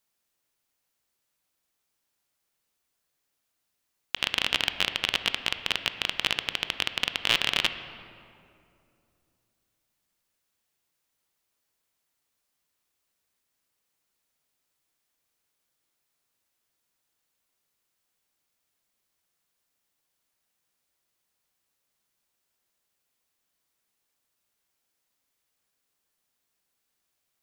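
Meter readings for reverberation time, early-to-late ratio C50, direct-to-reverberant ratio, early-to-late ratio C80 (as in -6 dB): 2.6 s, 10.5 dB, 9.5 dB, 11.0 dB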